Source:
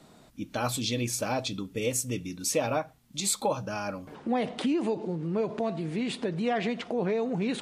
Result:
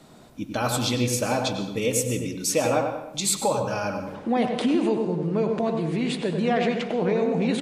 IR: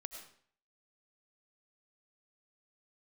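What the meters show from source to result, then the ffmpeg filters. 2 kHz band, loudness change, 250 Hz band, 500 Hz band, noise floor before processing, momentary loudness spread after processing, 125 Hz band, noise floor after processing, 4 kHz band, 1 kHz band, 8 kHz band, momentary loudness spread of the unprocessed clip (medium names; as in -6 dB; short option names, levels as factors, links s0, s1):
+5.0 dB, +5.5 dB, +5.5 dB, +6.0 dB, -56 dBFS, 5 LU, +6.0 dB, -44 dBFS, +4.5 dB, +5.5 dB, +4.5 dB, 6 LU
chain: -filter_complex "[0:a]asplit=2[s0][s1];[s1]adelay=97,lowpass=f=1500:p=1,volume=0.596,asplit=2[s2][s3];[s3]adelay=97,lowpass=f=1500:p=1,volume=0.46,asplit=2[s4][s5];[s5]adelay=97,lowpass=f=1500:p=1,volume=0.46,asplit=2[s6][s7];[s7]adelay=97,lowpass=f=1500:p=1,volume=0.46,asplit=2[s8][s9];[s9]adelay=97,lowpass=f=1500:p=1,volume=0.46,asplit=2[s10][s11];[s11]adelay=97,lowpass=f=1500:p=1,volume=0.46[s12];[s0][s2][s4][s6][s8][s10][s12]amix=inputs=7:normalize=0,asplit=2[s13][s14];[1:a]atrim=start_sample=2205,asetrate=35280,aresample=44100[s15];[s14][s15]afir=irnorm=-1:irlink=0,volume=1.33[s16];[s13][s16]amix=inputs=2:normalize=0,volume=0.841"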